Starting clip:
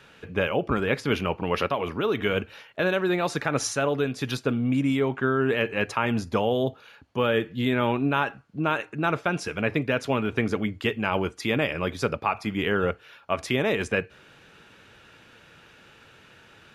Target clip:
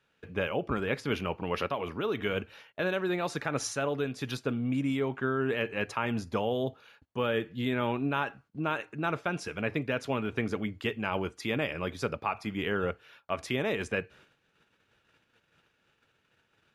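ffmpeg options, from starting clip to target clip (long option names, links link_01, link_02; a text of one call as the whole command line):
ffmpeg -i in.wav -af "agate=range=-15dB:threshold=-50dB:ratio=16:detection=peak,volume=-6dB" out.wav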